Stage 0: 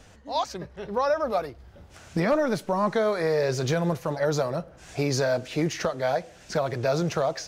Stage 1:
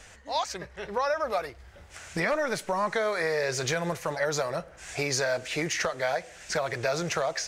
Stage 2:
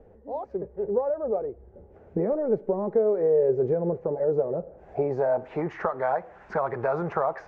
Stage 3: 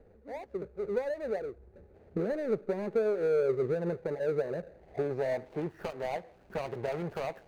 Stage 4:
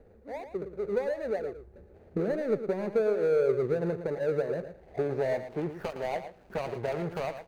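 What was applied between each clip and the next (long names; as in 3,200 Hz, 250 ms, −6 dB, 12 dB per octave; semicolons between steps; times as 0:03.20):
octave-band graphic EQ 125/250/2,000/8,000 Hz −5/−7/+8/+8 dB; downward compressor 2 to 1, threshold −26 dBFS, peak gain reduction 5 dB
low-pass filter sweep 470 Hz → 1,100 Hz, 0:04.53–0:05.75; hollow resonant body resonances 220/390/820 Hz, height 7 dB, ringing for 35 ms; dynamic equaliser 4,300 Hz, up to −4 dB, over −45 dBFS, Q 0.75; level −1.5 dB
running median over 41 samples; level −5 dB
single-tap delay 113 ms −10.5 dB; level +2 dB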